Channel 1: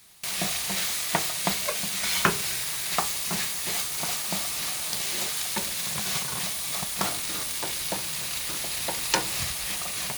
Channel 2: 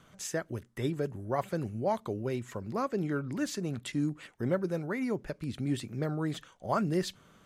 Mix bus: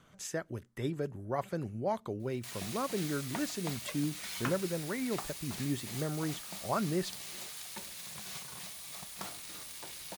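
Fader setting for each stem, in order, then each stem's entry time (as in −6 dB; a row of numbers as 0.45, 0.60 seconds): −15.0, −3.0 decibels; 2.20, 0.00 seconds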